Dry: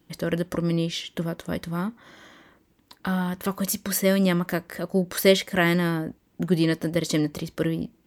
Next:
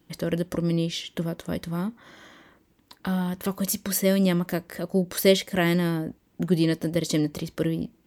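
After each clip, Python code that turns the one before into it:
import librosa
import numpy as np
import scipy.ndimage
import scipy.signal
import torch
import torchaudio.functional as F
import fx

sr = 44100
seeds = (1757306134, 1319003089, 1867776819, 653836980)

y = fx.dynamic_eq(x, sr, hz=1400.0, q=0.98, threshold_db=-40.0, ratio=4.0, max_db=-6)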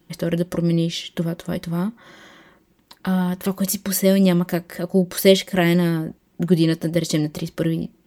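y = x + 0.39 * np.pad(x, (int(5.5 * sr / 1000.0), 0))[:len(x)]
y = y * 10.0 ** (3.0 / 20.0)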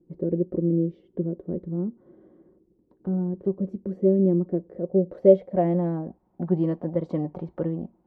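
y = fx.filter_sweep_lowpass(x, sr, from_hz=400.0, to_hz=830.0, start_s=4.49, end_s=6.19, q=2.9)
y = y * 10.0 ** (-7.5 / 20.0)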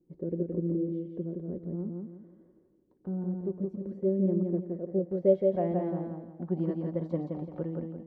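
y = fx.echo_feedback(x, sr, ms=170, feedback_pct=34, wet_db=-3.5)
y = y * 10.0 ** (-8.0 / 20.0)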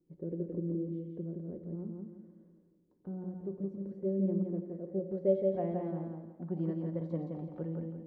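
y = fx.room_shoebox(x, sr, seeds[0], volume_m3=460.0, walls='mixed', distance_m=0.4)
y = y * 10.0 ** (-5.5 / 20.0)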